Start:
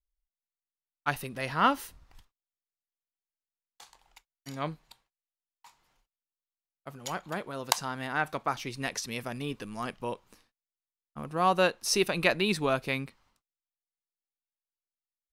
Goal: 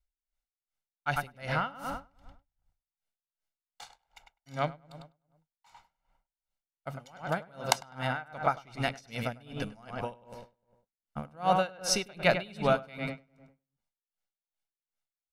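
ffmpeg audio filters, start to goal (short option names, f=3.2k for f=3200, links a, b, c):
-filter_complex "[0:a]highshelf=f=8.2k:g=-10,aecho=1:1:1.4:0.53,asplit=2[a][b];[b]acompressor=threshold=-33dB:ratio=6,volume=-1dB[c];[a][c]amix=inputs=2:normalize=0,asplit=2[d][e];[e]adelay=101,lowpass=f=2.3k:p=1,volume=-4.5dB,asplit=2[f][g];[g]adelay=101,lowpass=f=2.3k:p=1,volume=0.52,asplit=2[h][i];[i]adelay=101,lowpass=f=2.3k:p=1,volume=0.52,asplit=2[j][k];[k]adelay=101,lowpass=f=2.3k:p=1,volume=0.52,asplit=2[l][m];[m]adelay=101,lowpass=f=2.3k:p=1,volume=0.52,asplit=2[n][o];[o]adelay=101,lowpass=f=2.3k:p=1,volume=0.52,asplit=2[p][q];[q]adelay=101,lowpass=f=2.3k:p=1,volume=0.52[r];[d][f][h][j][l][n][p][r]amix=inputs=8:normalize=0,aeval=exprs='val(0)*pow(10,-25*(0.5-0.5*cos(2*PI*2.6*n/s))/20)':c=same"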